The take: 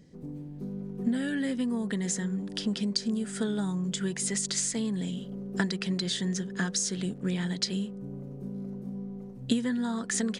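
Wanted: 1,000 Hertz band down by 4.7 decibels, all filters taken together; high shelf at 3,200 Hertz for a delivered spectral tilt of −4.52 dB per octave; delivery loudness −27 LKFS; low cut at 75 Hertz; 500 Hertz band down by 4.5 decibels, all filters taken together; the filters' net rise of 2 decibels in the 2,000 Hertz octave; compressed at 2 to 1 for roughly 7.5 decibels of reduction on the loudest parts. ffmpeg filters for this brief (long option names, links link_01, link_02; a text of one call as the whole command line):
ffmpeg -i in.wav -af "highpass=75,equalizer=frequency=500:width_type=o:gain=-5,equalizer=frequency=1000:width_type=o:gain=-6,equalizer=frequency=2000:width_type=o:gain=7,highshelf=frequency=3200:gain=-8.5,acompressor=threshold=-37dB:ratio=2,volume=10.5dB" out.wav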